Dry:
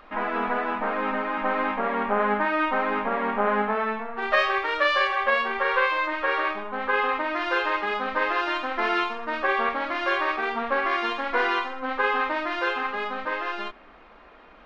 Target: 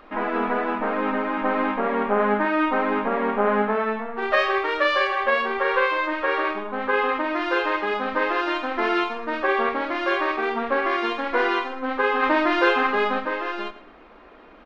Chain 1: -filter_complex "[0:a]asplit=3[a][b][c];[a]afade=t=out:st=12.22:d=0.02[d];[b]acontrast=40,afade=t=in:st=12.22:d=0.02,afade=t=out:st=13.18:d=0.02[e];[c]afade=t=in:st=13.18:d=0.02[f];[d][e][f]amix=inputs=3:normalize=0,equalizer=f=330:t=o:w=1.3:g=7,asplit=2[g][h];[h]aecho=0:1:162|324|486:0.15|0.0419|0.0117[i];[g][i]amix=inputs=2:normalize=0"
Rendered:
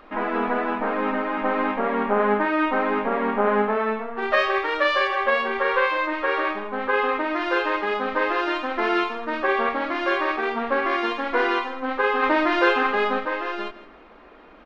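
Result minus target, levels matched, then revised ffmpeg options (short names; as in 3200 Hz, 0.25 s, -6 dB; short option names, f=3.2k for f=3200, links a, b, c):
echo 52 ms late
-filter_complex "[0:a]asplit=3[a][b][c];[a]afade=t=out:st=12.22:d=0.02[d];[b]acontrast=40,afade=t=in:st=12.22:d=0.02,afade=t=out:st=13.18:d=0.02[e];[c]afade=t=in:st=13.18:d=0.02[f];[d][e][f]amix=inputs=3:normalize=0,equalizer=f=330:t=o:w=1.3:g=7,asplit=2[g][h];[h]aecho=0:1:110|220|330:0.15|0.0419|0.0117[i];[g][i]amix=inputs=2:normalize=0"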